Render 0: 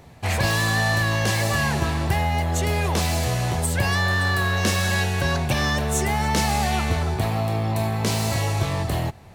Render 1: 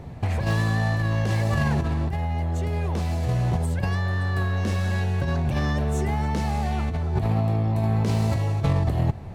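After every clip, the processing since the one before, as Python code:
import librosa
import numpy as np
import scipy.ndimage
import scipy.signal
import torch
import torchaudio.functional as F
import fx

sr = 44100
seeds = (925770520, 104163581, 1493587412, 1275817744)

y = fx.tilt_eq(x, sr, slope=-3.0)
y = fx.over_compress(y, sr, threshold_db=-19.0, ratio=-1.0)
y = fx.low_shelf(y, sr, hz=67.0, db=-7.5)
y = y * 10.0 ** (-2.0 / 20.0)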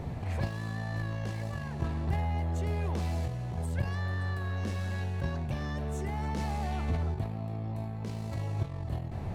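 y = fx.over_compress(x, sr, threshold_db=-27.0, ratio=-0.5)
y = y * 10.0 ** (-4.0 / 20.0)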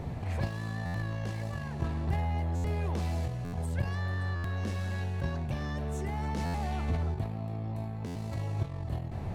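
y = fx.buffer_glitch(x, sr, at_s=(0.85, 2.55, 3.44, 4.35, 6.45, 8.06), block=512, repeats=7)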